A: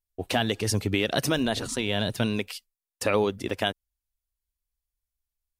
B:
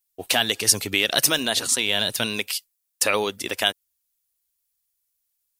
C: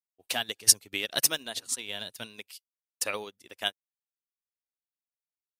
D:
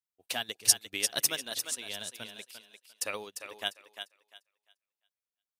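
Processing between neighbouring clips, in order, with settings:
spectral tilt +3.5 dB per octave; level +3 dB
expander for the loud parts 2.5 to 1, over −35 dBFS
feedback echo with a high-pass in the loop 348 ms, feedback 24%, high-pass 420 Hz, level −8 dB; level −3.5 dB

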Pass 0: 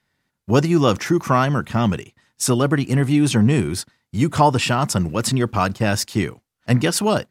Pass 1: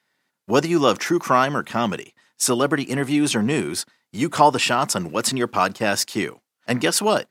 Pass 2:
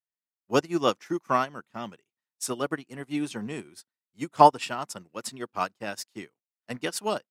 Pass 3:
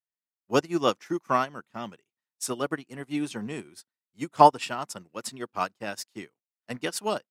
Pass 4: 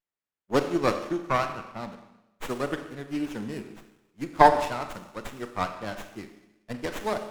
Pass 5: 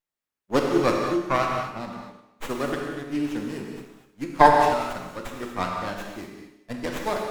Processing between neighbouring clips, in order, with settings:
Bessel high-pass filter 330 Hz, order 2; level +1.5 dB
expander for the loud parts 2.5 to 1, over −34 dBFS
no processing that can be heard
four-comb reverb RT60 0.94 s, combs from 29 ms, DRR 7.5 dB; windowed peak hold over 9 samples
reverb whose tail is shaped and stops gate 270 ms flat, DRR 2 dB; level +1 dB

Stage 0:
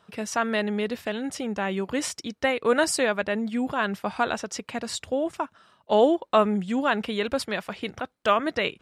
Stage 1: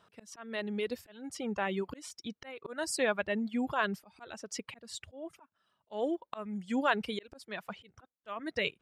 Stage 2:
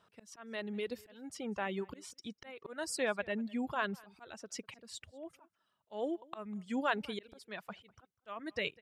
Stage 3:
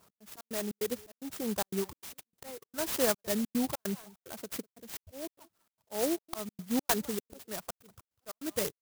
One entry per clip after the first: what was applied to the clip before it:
reverb reduction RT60 1.6 s; volume swells 422 ms; level −4 dB
slap from a distant wall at 34 metres, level −24 dB; level −4 dB
gate pattern "x.xx.xx.xxx.xxx" 148 BPM −60 dB; Butterworth band-reject 2,600 Hz, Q 2.9; converter with an unsteady clock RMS 0.14 ms; level +6 dB

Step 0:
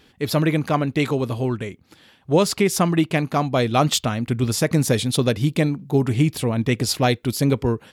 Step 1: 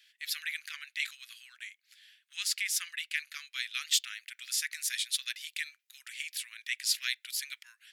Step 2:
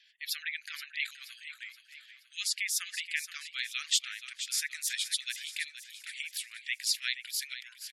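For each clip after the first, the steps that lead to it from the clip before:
Butterworth high-pass 1,700 Hz 48 dB per octave; level −5 dB
gate on every frequency bin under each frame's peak −20 dB strong; on a send: repeating echo 475 ms, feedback 46%, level −11.5 dB

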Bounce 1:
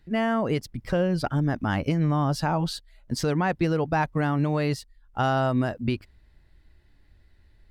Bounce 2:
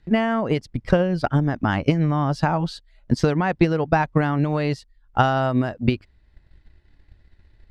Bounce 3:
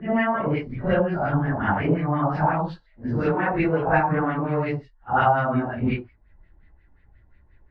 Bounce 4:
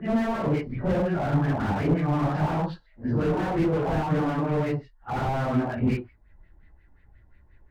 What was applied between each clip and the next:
Bessel low-pass filter 5,800 Hz, order 2; transient designer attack +8 dB, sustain −3 dB; level +2 dB
random phases in long frames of 200 ms; auto-filter low-pass sine 5.6 Hz 870–2,300 Hz; level −3 dB
slew-rate limiting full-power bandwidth 35 Hz

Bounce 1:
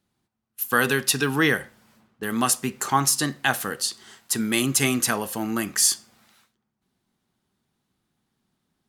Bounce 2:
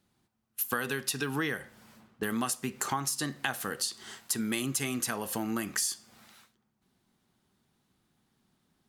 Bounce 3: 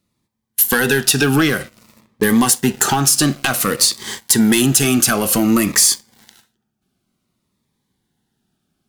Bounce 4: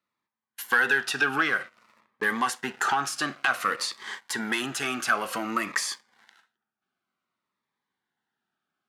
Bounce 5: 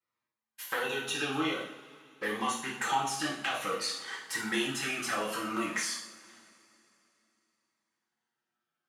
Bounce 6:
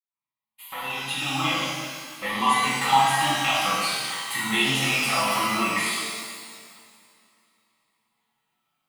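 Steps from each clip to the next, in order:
downward compressor 6 to 1, threshold −31 dBFS, peak gain reduction 15.5 dB; level +2 dB
leveller curve on the samples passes 3; phaser whose notches keep moving one way falling 0.54 Hz; level +9 dB
resonant band-pass 1,400 Hz, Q 1.4; level −2 dB
flanger swept by the level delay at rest 8.3 ms, full sweep at −24 dBFS; coupled-rooms reverb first 0.58 s, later 3.2 s, from −22 dB, DRR −6 dB; level −7 dB
fade in at the beginning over 1.78 s; phaser with its sweep stopped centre 1,600 Hz, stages 6; reverb with rising layers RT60 1.6 s, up +12 semitones, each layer −8 dB, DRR −1.5 dB; level +9 dB

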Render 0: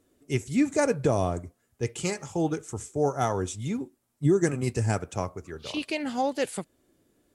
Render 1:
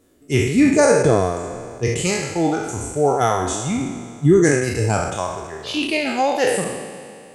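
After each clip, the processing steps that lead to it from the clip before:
peak hold with a decay on every bin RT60 2.81 s
reverb reduction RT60 1.7 s
level +7 dB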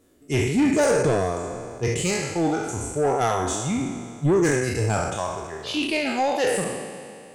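soft clipping −12.5 dBFS, distortion −13 dB
level −2 dB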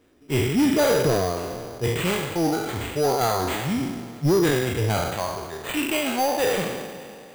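sample-rate reduction 5,400 Hz, jitter 0%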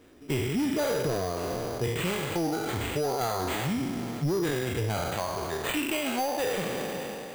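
downward compressor 5 to 1, threshold −32 dBFS, peak gain reduction 13.5 dB
level +4.5 dB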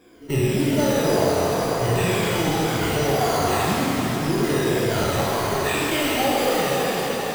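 rippled gain that drifts along the octave scale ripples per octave 1.8, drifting −1.9 Hz, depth 13 dB
reverb with rising layers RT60 3.6 s, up +7 semitones, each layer −8 dB, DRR −4.5 dB

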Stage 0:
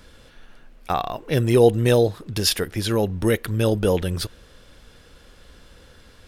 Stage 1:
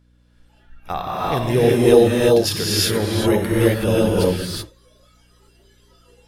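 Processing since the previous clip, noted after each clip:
reverb whose tail is shaped and stops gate 400 ms rising, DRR −6.5 dB
mains hum 60 Hz, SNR 21 dB
noise reduction from a noise print of the clip's start 16 dB
level −3.5 dB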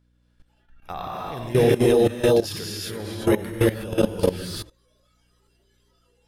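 output level in coarse steps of 16 dB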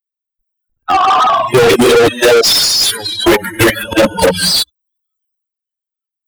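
spectral dynamics exaggerated over time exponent 3
transient designer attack +8 dB, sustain +12 dB
mid-hump overdrive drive 39 dB, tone 6,300 Hz, clips at −4.5 dBFS
level +3.5 dB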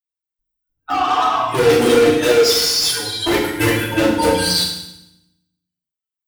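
in parallel at −1 dB: brickwall limiter −11.5 dBFS, peak gain reduction 10.5 dB
on the sum: feedback delay network reverb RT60 0.83 s, low-frequency decay 1.45×, high-frequency decay 1×, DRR −6 dB
level −16.5 dB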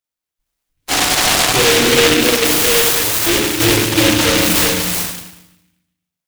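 soft clipping −14.5 dBFS, distortion −10 dB
single-tap delay 378 ms −3.5 dB
short delay modulated by noise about 2,500 Hz, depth 0.28 ms
level +5 dB

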